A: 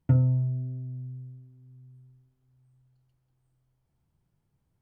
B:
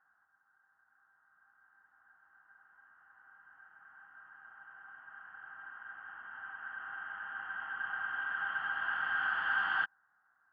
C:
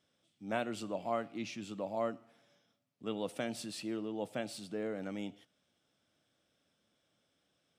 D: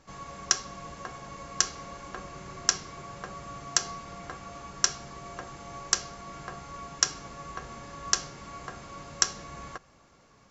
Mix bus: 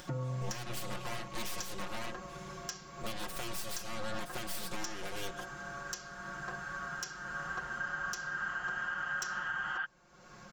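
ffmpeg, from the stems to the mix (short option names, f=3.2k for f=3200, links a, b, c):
-filter_complex "[0:a]highpass=240,volume=-1dB[a];[1:a]volume=-1.5dB[b];[2:a]highshelf=f=2.1k:g=12,acompressor=threshold=-38dB:ratio=6,aeval=exprs='0.0282*(cos(1*acos(clip(val(0)/0.0282,-1,1)))-cos(1*PI/2))+0.00794*(cos(3*acos(clip(val(0)/0.0282,-1,1)))-cos(3*PI/2))+0.00447*(cos(7*acos(clip(val(0)/0.0282,-1,1)))-cos(7*PI/2))+0.0112*(cos(8*acos(clip(val(0)/0.0282,-1,1)))-cos(8*PI/2))':c=same,volume=0.5dB[c];[3:a]asoftclip=type=tanh:threshold=-13dB,volume=-7dB[d];[a][b][c][d]amix=inputs=4:normalize=0,aecho=1:1:5.6:0.93,acompressor=mode=upward:threshold=-41dB:ratio=2.5,alimiter=level_in=3.5dB:limit=-24dB:level=0:latency=1:release=321,volume=-3.5dB"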